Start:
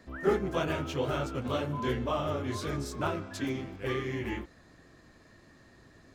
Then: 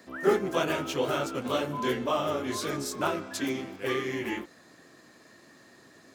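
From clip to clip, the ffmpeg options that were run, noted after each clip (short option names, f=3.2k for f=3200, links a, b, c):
-af "highpass=210,highshelf=f=6.2k:g=8.5,volume=3.5dB"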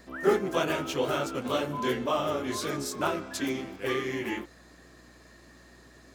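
-af "aeval=exprs='val(0)+0.00126*(sin(2*PI*60*n/s)+sin(2*PI*2*60*n/s)/2+sin(2*PI*3*60*n/s)/3+sin(2*PI*4*60*n/s)/4+sin(2*PI*5*60*n/s)/5)':c=same"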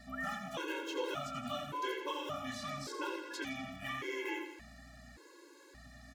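-filter_complex "[0:a]acrossover=split=670|2400|5700[a][b][c][d];[a]acompressor=threshold=-41dB:ratio=4[e];[b]acompressor=threshold=-39dB:ratio=4[f];[c]acompressor=threshold=-45dB:ratio=4[g];[d]acompressor=threshold=-59dB:ratio=4[h];[e][f][g][h]amix=inputs=4:normalize=0,aecho=1:1:85|170|255|340|425|510:0.376|0.195|0.102|0.0528|0.0275|0.0143,afftfilt=real='re*gt(sin(2*PI*0.87*pts/sr)*(1-2*mod(floor(b*sr/1024/280),2)),0)':imag='im*gt(sin(2*PI*0.87*pts/sr)*(1-2*mod(floor(b*sr/1024/280),2)),0)':win_size=1024:overlap=0.75"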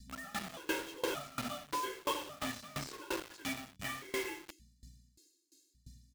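-filter_complex "[0:a]acrossover=split=220|4100[a][b][c];[b]acrusher=bits=6:mix=0:aa=0.000001[d];[a][d][c]amix=inputs=3:normalize=0,aeval=exprs='val(0)*pow(10,-23*if(lt(mod(2.9*n/s,1),2*abs(2.9)/1000),1-mod(2.9*n/s,1)/(2*abs(2.9)/1000),(mod(2.9*n/s,1)-2*abs(2.9)/1000)/(1-2*abs(2.9)/1000))/20)':c=same,volume=6.5dB"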